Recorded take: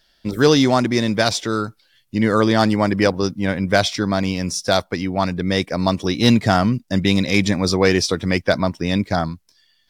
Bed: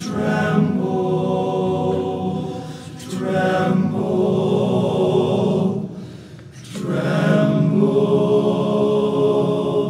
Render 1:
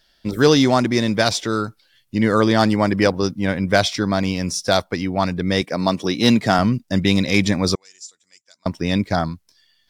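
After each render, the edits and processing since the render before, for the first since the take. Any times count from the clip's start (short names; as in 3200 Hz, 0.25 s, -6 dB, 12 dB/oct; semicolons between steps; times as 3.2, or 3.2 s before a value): 5.61–6.59 HPF 140 Hz; 7.75–8.66 band-pass 7200 Hz, Q 12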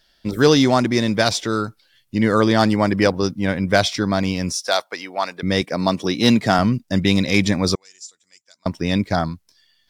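4.52–5.43 HPF 610 Hz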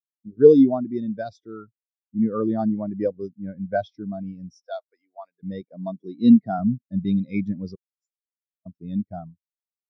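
spectral expander 2.5:1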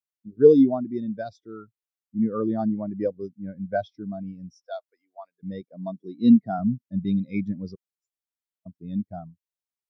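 gain -2 dB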